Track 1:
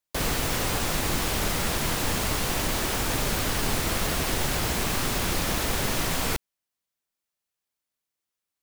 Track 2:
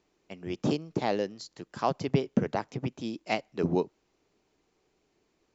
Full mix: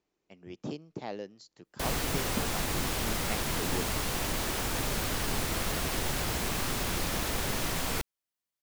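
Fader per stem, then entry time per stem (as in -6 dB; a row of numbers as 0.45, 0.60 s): -5.0, -10.0 dB; 1.65, 0.00 s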